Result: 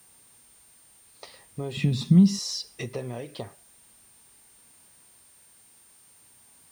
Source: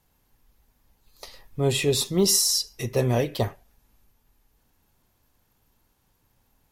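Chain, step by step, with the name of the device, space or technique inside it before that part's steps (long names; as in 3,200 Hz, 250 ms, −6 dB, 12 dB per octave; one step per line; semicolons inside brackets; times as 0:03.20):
medium wave at night (band-pass filter 110–4,300 Hz; downward compressor 6 to 1, threshold −32 dBFS, peak gain reduction 15 dB; amplitude tremolo 0.44 Hz, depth 40%; steady tone 9,000 Hz −59 dBFS; white noise bed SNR 22 dB)
0:01.77–0:02.39: low shelf with overshoot 290 Hz +12 dB, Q 3
level +3.5 dB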